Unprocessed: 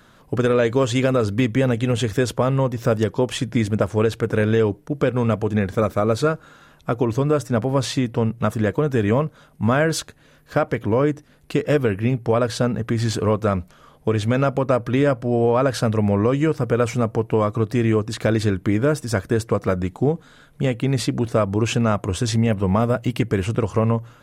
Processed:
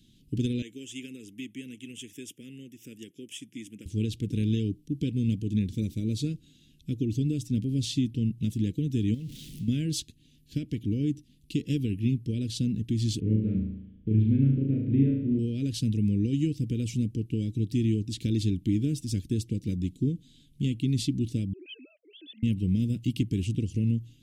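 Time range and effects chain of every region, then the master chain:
0.62–3.86 s: high-pass 520 Hz + static phaser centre 1.8 kHz, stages 4
9.14–9.68 s: jump at every zero crossing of -31 dBFS + peaking EQ 1.9 kHz +3.5 dB 0.22 oct + compression 10:1, threshold -24 dBFS
13.20–15.39 s: block-companded coder 5-bit + low-pass 1.8 kHz 24 dB/octave + flutter echo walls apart 6.3 m, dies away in 0.8 s
21.53–22.43 s: formants replaced by sine waves + ladder high-pass 510 Hz, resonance 35% + peaking EQ 720 Hz +6 dB 0.67 oct
whole clip: elliptic band-stop 300–3000 Hz, stop band 80 dB; treble shelf 9.3 kHz -5 dB; trim -4.5 dB

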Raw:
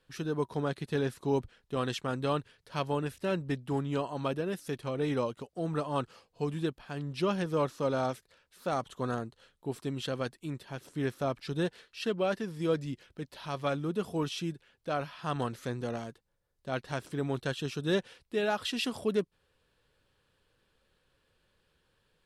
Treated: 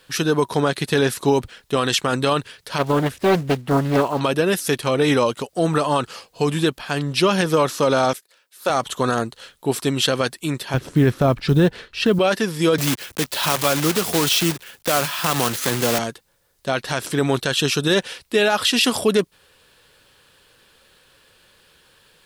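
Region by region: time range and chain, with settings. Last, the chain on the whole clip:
2.78–4.21 s: block-companded coder 5-bit + treble shelf 2.6 kHz -12 dB + loudspeaker Doppler distortion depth 0.7 ms
8.13–8.70 s: high-pass 280 Hz + treble shelf 11 kHz +8 dB + upward expansion, over -57 dBFS
10.74–12.19 s: RIAA curve playback + short-mantissa float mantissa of 6-bit
12.78–15.99 s: block-companded coder 3-bit + three bands compressed up and down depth 40%
whole clip: tilt EQ +2 dB/octave; loudness maximiser +24 dB; trim -6.5 dB

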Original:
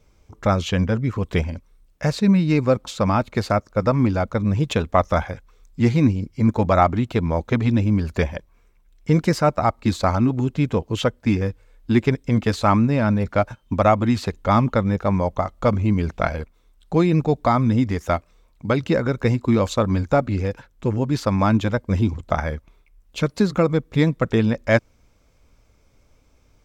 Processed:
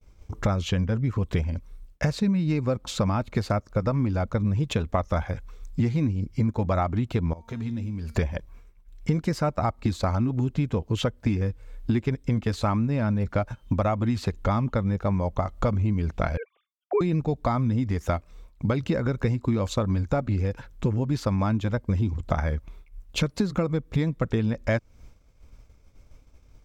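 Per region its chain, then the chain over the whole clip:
7.33–8.15 s: treble shelf 4.5 kHz +8 dB + compression 3:1, threshold -30 dBFS + feedback comb 230 Hz, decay 0.68 s, mix 70%
16.37–17.01 s: formants replaced by sine waves + high-pass 250 Hz + band-stop 880 Hz, Q 7
whole clip: expander -50 dBFS; bass shelf 140 Hz +8.5 dB; compression 6:1, threshold -26 dBFS; trim +4 dB

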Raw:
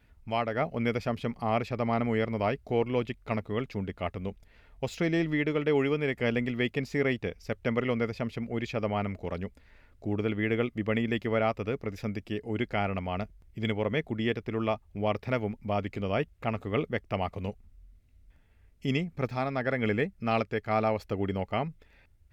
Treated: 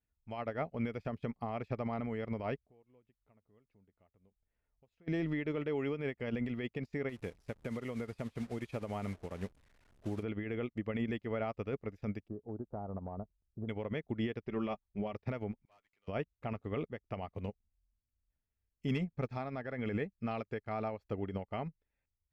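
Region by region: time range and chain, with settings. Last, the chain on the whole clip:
2.60–5.08 s: compression 3:1, threshold -48 dBFS + treble shelf 3.6 kHz -11 dB
7.09–10.23 s: one-bit delta coder 64 kbps, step -39 dBFS + compression 12:1, threshold -29 dBFS
12.28–13.69 s: inverse Chebyshev band-stop 2.1–6.7 kHz, stop band 50 dB + compression 8:1, threshold -31 dBFS
14.46–15.13 s: Chebyshev low-pass 6.6 kHz, order 4 + comb 5.2 ms, depth 52%
15.65–16.08 s: high-pass 1.2 kHz + valve stage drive 41 dB, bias 0.35
18.87–19.29 s: band-stop 340 Hz, Q 6.5 + hard clipper -20.5 dBFS + tape noise reduction on one side only decoder only
whole clip: treble shelf 2.7 kHz -7 dB; peak limiter -25.5 dBFS; upward expansion 2.5:1, over -49 dBFS; trim +1 dB

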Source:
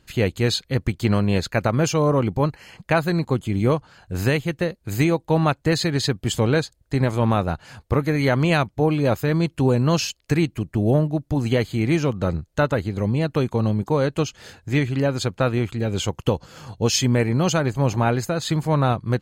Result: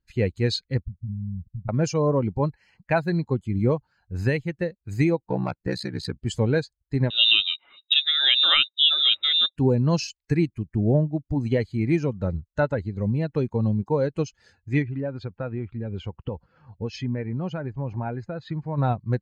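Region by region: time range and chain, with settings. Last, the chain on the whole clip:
0.81–1.69 s: CVSD coder 16 kbps + inverse Chebyshev low-pass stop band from 510 Hz, stop band 50 dB + compression, threshold -23 dBFS
5.22–6.22 s: self-modulated delay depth 0.089 ms + ring modulator 31 Hz
7.10–9.56 s: frequency inversion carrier 3.8 kHz + small resonant body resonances 350/560/1200/2800 Hz, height 12 dB, ringing for 20 ms
14.82–18.78 s: low-pass 2.8 kHz + compression 2:1, threshold -22 dBFS
whole clip: expander on every frequency bin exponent 1.5; low-pass 5.3 kHz 12 dB/octave; dynamic bell 1.2 kHz, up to -7 dB, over -46 dBFS, Q 4.1

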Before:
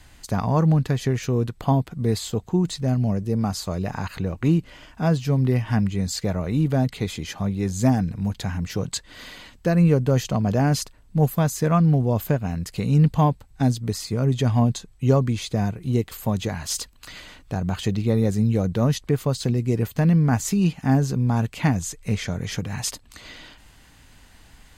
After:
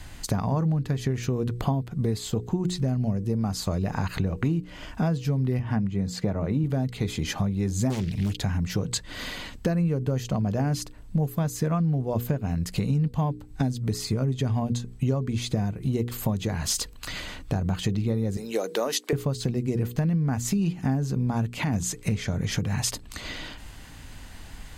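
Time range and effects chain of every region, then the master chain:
5.59–6.64 s: high-pass 100 Hz + treble shelf 2.8 kHz -11 dB
7.90–8.37 s: resonant high shelf 2 kHz +12 dB, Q 3 + loudspeaker Doppler distortion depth 0.89 ms
18.37–19.13 s: high-pass 370 Hz 24 dB/octave + treble shelf 3.4 kHz +7.5 dB
21.58–22.09 s: high-pass 99 Hz 6 dB/octave + compressor with a negative ratio -24 dBFS
whole clip: bass shelf 390 Hz +4.5 dB; hum notches 60/120/180/240/300/360/420/480 Hz; compression 6:1, threshold -28 dBFS; trim +5 dB

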